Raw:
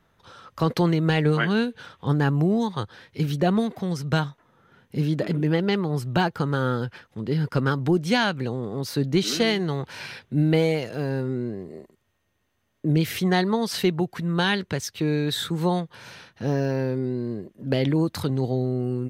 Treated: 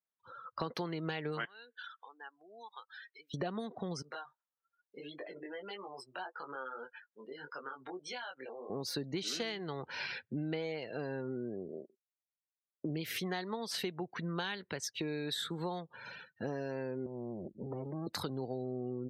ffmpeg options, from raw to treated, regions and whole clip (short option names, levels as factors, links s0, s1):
-filter_complex "[0:a]asettb=1/sr,asplit=3[s0][s1][s2];[s0]atrim=end=1.454[s3];[s1]atrim=start=1.45:end=3.34,asetpts=PTS-STARTPTS,afade=t=in:d=0.004:c=qsin,afade=t=out:st=1.886:d=0.004:c=qsin,acompressor=threshold=0.00891:ratio=3:attack=3.2:release=140:knee=1:detection=peak,highpass=710,highshelf=f=4500:g=9[s4];[s2]atrim=start=3.336[s5];[s3][s4]acrossfade=d=0.004:c1=hsin:c2=qsin[s6];[s6][s5]acrossfade=d=0.004:c1=qsin:c2=hsin,asettb=1/sr,asplit=3[s7][s8][s9];[s7]atrim=end=4.024[s10];[s8]atrim=start=4.02:end=8.7,asetpts=PTS-STARTPTS,afade=t=in:d=0.004:c=qsin,afade=t=out:st=4.676:d=0.004:c=qsin,highpass=560,acompressor=threshold=0.02:ratio=6:attack=3.2:release=140:knee=1:detection=peak,flanger=delay=20:depth=2.8:speed=1.7[s11];[s9]atrim=start=8.696[s12];[s10][s11]acrossfade=d=0.004:c1=hsin:c2=qsin[s13];[s13][s12]acrossfade=d=0.004:c1=qsin:c2=hsin,asettb=1/sr,asplit=3[s14][s15][s16];[s14]atrim=end=17.064[s17];[s15]atrim=start=17.06:end=18.07,asetpts=PTS-STARTPTS,afade=t=in:d=0.004:c=qsin,afade=t=out:st=1.006:d=0.004:c=qsin,aemphasis=mode=reproduction:type=riaa,acompressor=threshold=0.0501:ratio=5:attack=3.2:release=140:knee=1:detection=peak,aeval=exprs='clip(val(0),-1,0.0106)':c=same[s18];[s16]atrim=start=18.066[s19];[s17][s18]acrossfade=d=0.004:c1=hsin:c2=qsin[s20];[s20][s19]acrossfade=d=0.004:c1=qsin:c2=hsin,afftdn=nr=36:nf=-43,highpass=f=450:p=1,acompressor=threshold=0.0178:ratio=6"